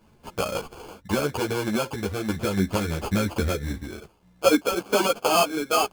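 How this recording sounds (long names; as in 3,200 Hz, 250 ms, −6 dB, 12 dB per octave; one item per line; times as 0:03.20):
sample-and-hold tremolo
aliases and images of a low sample rate 1,900 Hz, jitter 0%
a shimmering, thickened sound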